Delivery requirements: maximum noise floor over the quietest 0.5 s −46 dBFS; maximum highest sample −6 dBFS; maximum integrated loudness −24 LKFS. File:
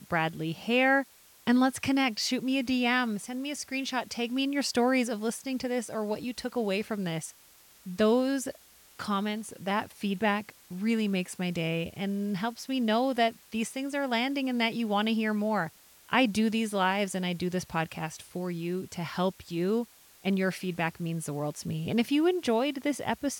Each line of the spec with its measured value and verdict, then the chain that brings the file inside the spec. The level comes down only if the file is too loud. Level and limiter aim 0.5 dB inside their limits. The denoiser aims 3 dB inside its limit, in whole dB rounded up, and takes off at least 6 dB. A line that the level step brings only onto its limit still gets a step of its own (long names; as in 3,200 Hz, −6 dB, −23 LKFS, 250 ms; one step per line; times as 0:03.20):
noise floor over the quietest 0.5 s −57 dBFS: in spec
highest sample −11.5 dBFS: in spec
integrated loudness −29.5 LKFS: in spec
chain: no processing needed